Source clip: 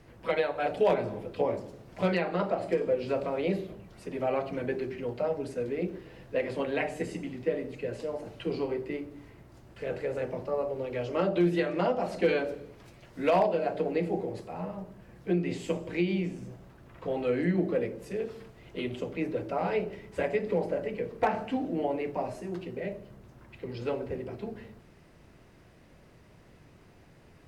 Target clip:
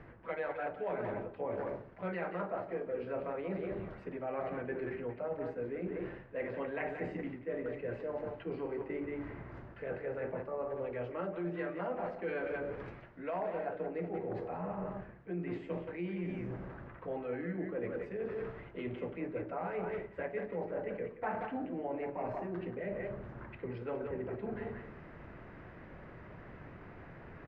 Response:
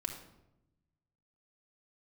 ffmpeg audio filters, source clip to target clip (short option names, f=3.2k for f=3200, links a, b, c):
-filter_complex "[0:a]asplit=2[a][b];[b]adelay=180,highpass=300,lowpass=3.4k,asoftclip=type=hard:threshold=-25dB,volume=-7dB[c];[a][c]amix=inputs=2:normalize=0,areverse,acompressor=threshold=-42dB:ratio=6,areverse,lowpass=f=1.7k:t=q:w=1.6,volume=5dB"